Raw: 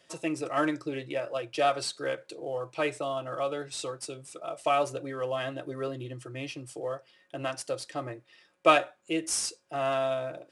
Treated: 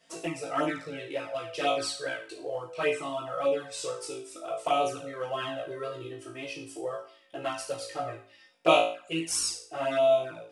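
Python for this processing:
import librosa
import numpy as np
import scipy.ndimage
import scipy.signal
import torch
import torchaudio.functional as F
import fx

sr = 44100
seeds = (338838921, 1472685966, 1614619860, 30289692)

y = fx.room_flutter(x, sr, wall_m=3.1, rt60_s=0.46)
y = fx.env_flanger(y, sr, rest_ms=4.5, full_db=-19.0)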